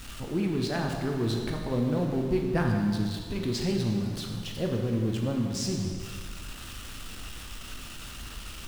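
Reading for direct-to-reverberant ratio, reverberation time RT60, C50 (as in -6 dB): 1.0 dB, 1.9 s, 3.5 dB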